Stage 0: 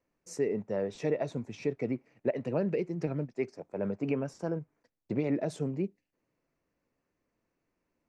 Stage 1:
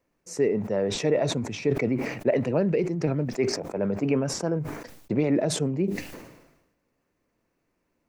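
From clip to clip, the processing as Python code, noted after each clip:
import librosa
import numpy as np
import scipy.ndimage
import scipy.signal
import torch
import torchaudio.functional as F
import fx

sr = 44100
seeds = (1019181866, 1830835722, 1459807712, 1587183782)

y = fx.sustainer(x, sr, db_per_s=56.0)
y = y * librosa.db_to_amplitude(6.0)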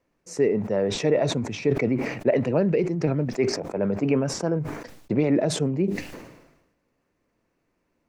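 y = fx.high_shelf(x, sr, hz=9800.0, db=-9.0)
y = y * librosa.db_to_amplitude(2.0)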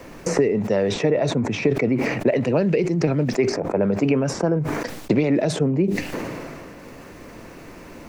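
y = fx.band_squash(x, sr, depth_pct=100)
y = y * librosa.db_to_amplitude(2.5)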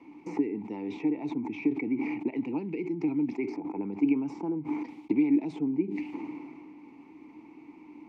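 y = fx.vowel_filter(x, sr, vowel='u')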